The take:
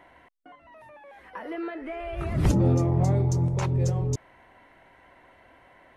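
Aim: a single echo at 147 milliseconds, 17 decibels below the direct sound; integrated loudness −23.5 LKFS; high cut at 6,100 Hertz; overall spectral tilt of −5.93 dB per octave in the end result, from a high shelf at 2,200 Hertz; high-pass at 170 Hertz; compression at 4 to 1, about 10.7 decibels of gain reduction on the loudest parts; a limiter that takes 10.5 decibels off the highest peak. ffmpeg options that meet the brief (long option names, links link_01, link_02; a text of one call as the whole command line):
ffmpeg -i in.wav -af "highpass=170,lowpass=6100,highshelf=frequency=2200:gain=-8.5,acompressor=threshold=-34dB:ratio=4,alimiter=level_in=10.5dB:limit=-24dB:level=0:latency=1,volume=-10.5dB,aecho=1:1:147:0.141,volume=19.5dB" out.wav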